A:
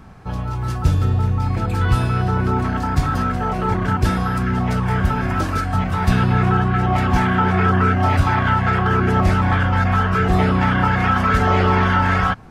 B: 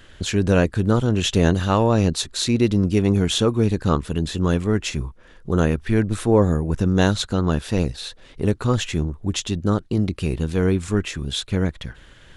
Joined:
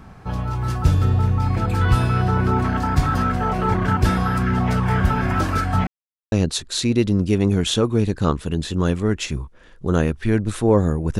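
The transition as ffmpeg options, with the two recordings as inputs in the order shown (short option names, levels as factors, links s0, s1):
-filter_complex "[0:a]apad=whole_dur=11.19,atrim=end=11.19,asplit=2[s0][s1];[s0]atrim=end=5.87,asetpts=PTS-STARTPTS,afade=t=out:st=5.866:d=0.004:c=hsin[s2];[s1]atrim=start=5.87:end=6.32,asetpts=PTS-STARTPTS,volume=0[s3];[1:a]atrim=start=1.96:end=6.83,asetpts=PTS-STARTPTS,afade=t=in:d=0.004:c=hsin[s4];[s2][s3][s4]concat=n=3:v=0:a=1"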